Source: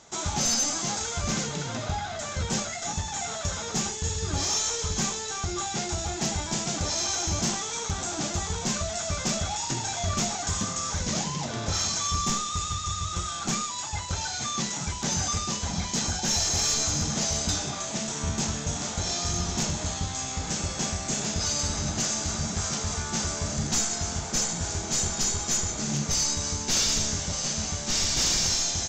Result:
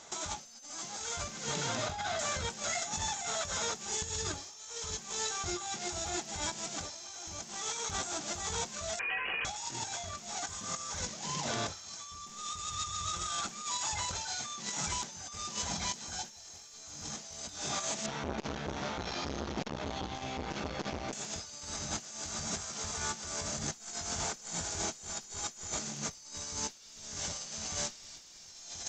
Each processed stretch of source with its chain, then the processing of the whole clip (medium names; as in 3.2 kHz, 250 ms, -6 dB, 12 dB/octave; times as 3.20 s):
8.99–9.45 s: high-pass 350 Hz + frequency inversion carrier 3.1 kHz
18.06–21.13 s: distance through air 280 m + doubling 15 ms -3.5 dB + transformer saturation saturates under 490 Hz
whole clip: bass shelf 270 Hz -9.5 dB; compressor with a negative ratio -35 dBFS, ratio -0.5; trim -3 dB